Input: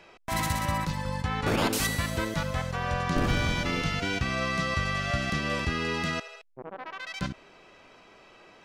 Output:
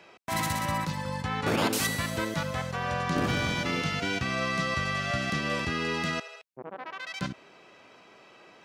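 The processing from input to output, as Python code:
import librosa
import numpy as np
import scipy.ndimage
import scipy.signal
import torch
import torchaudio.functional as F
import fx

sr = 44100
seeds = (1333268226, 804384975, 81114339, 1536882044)

y = scipy.signal.sosfilt(scipy.signal.butter(2, 110.0, 'highpass', fs=sr, output='sos'), x)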